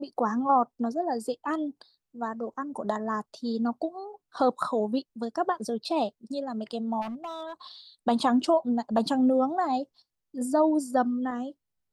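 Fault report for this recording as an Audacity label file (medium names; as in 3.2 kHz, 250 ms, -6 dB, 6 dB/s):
7.010000	7.530000	clipped -32 dBFS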